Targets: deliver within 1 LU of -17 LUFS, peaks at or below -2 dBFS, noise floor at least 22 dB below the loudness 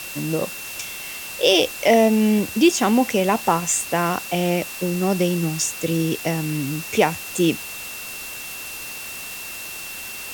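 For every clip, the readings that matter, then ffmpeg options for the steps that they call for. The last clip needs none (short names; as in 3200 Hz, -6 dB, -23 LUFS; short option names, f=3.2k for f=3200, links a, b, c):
steady tone 2700 Hz; tone level -35 dBFS; noise floor -34 dBFS; noise floor target -44 dBFS; loudness -21.5 LUFS; peak -3.5 dBFS; loudness target -17.0 LUFS
-> -af "bandreject=f=2.7k:w=30"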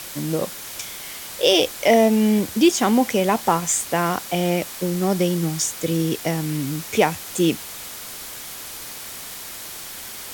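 steady tone none; noise floor -35 dBFS; noise floor target -43 dBFS
-> -af "afftdn=nr=8:nf=-35"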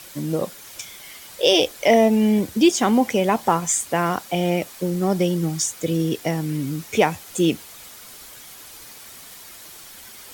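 noise floor -42 dBFS; noise floor target -43 dBFS
-> -af "afftdn=nr=6:nf=-42"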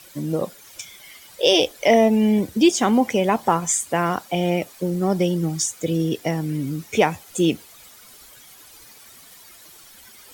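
noise floor -47 dBFS; loudness -20.5 LUFS; peak -3.5 dBFS; loudness target -17.0 LUFS
-> -af "volume=3.5dB,alimiter=limit=-2dB:level=0:latency=1"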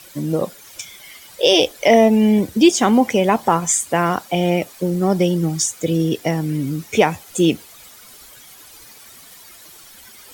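loudness -17.5 LUFS; peak -2.0 dBFS; noise floor -43 dBFS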